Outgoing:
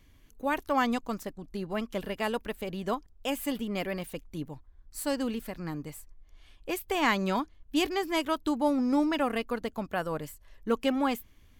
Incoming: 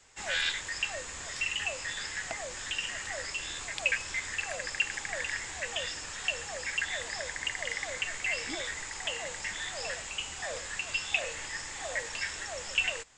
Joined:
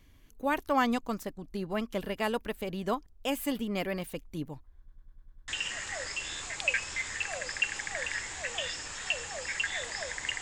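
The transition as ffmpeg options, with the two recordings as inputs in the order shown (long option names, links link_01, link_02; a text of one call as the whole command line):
ffmpeg -i cue0.wav -i cue1.wav -filter_complex "[0:a]apad=whole_dur=10.41,atrim=end=10.41,asplit=7[link_01][link_02][link_03][link_04][link_05][link_06][link_07];[link_01]atrim=end=4.882[link_08];[link_02]atrim=start=4.778:end=4.882[link_09];[link_03]atrim=start=4.778:end=4.882[link_10];[link_04]atrim=start=4.778:end=4.882[link_11];[link_05]atrim=start=4.778:end=4.882[link_12];[link_06]atrim=start=4.778:end=4.882[link_13];[link_07]atrim=start=4.778:end=4.882[link_14];[1:a]atrim=start=2.658:end=7.59[link_15];[link_08][link_09]acrossfade=duration=0.004:curve1=hsin:curve2=hsin[link_16];[link_16][link_10]acrossfade=duration=0.004:curve1=hsin:curve2=hsin[link_17];[link_17][link_11]acrossfade=duration=0.004:curve1=hsin:curve2=hsin[link_18];[link_18][link_12]acrossfade=duration=0.004:curve1=hsin:curve2=hsin[link_19];[link_19][link_13]acrossfade=duration=0.004:curve1=hsin:curve2=hsin[link_20];[link_20][link_14]acrossfade=duration=0.004:curve1=hsin:curve2=hsin[link_21];[link_21][link_15]acrossfade=duration=0.004:curve1=hsin:curve2=hsin" out.wav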